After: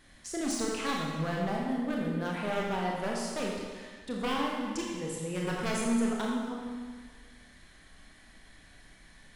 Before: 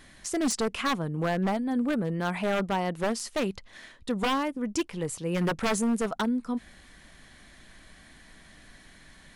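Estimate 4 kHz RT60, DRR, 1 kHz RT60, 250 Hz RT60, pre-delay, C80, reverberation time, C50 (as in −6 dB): 1.5 s, −2.5 dB, 1.6 s, 1.6 s, 25 ms, 1.5 dB, 1.6 s, 0.0 dB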